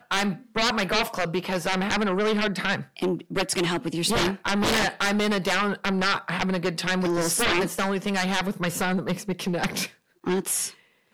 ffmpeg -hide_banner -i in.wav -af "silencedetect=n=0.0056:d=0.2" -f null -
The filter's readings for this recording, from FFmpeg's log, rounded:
silence_start: 9.92
silence_end: 10.24 | silence_duration: 0.32
silence_start: 10.74
silence_end: 11.14 | silence_duration: 0.39